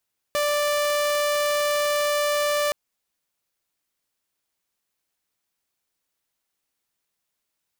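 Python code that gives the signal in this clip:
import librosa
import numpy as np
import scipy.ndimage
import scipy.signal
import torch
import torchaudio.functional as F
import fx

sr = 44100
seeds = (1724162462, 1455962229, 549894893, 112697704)

y = 10.0 ** (-18.0 / 20.0) * (2.0 * np.mod(588.0 * (np.arange(round(2.37 * sr)) / sr), 1.0) - 1.0)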